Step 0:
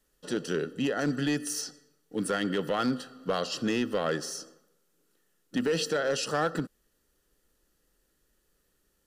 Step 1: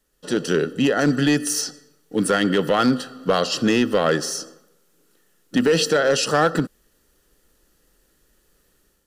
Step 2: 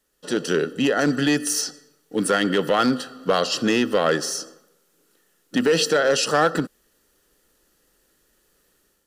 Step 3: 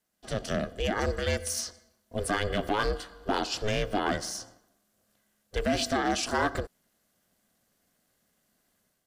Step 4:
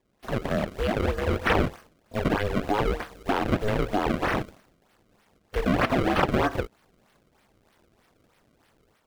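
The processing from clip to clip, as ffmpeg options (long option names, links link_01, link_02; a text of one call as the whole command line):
ffmpeg -i in.wav -af "dynaudnorm=framelen=110:gausssize=5:maxgain=7.5dB,volume=2.5dB" out.wav
ffmpeg -i in.wav -af "lowshelf=frequency=150:gain=-9" out.wav
ffmpeg -i in.wav -af "aeval=exprs='val(0)*sin(2*PI*210*n/s)':channel_layout=same,volume=-5.5dB" out.wav
ffmpeg -i in.wav -filter_complex "[0:a]highshelf=frequency=4300:width_type=q:width=1.5:gain=7.5,acrusher=samples=29:mix=1:aa=0.000001:lfo=1:lforange=46.4:lforate=3.2,acrossover=split=3300[link_01][link_02];[link_02]acompressor=threshold=-50dB:ratio=4:attack=1:release=60[link_03];[link_01][link_03]amix=inputs=2:normalize=0,volume=3.5dB" out.wav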